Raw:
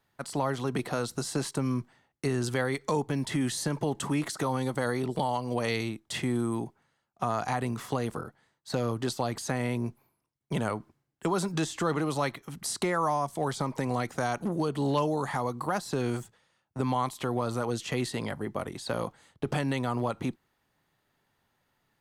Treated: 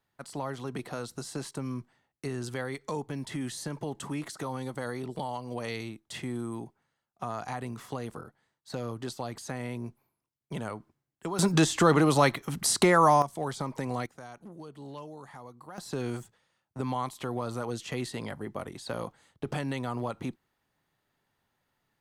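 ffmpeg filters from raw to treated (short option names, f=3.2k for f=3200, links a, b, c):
-af "asetnsamples=n=441:p=0,asendcmd='11.39 volume volume 7dB;13.22 volume volume -3dB;14.06 volume volume -16dB;15.78 volume volume -3.5dB',volume=-6dB"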